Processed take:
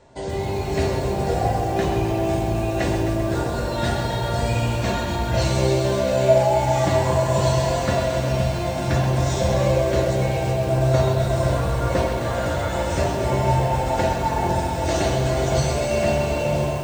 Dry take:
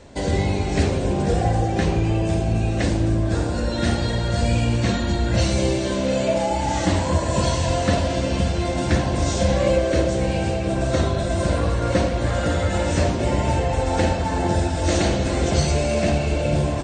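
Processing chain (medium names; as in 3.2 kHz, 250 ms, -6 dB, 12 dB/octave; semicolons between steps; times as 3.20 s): level rider gain up to 8 dB; peaking EQ 830 Hz +7 dB 1.3 oct; feedback comb 130 Hz, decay 0.29 s, harmonics odd, mix 80%; bit-crushed delay 131 ms, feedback 80%, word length 7-bit, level -8 dB; trim +1.5 dB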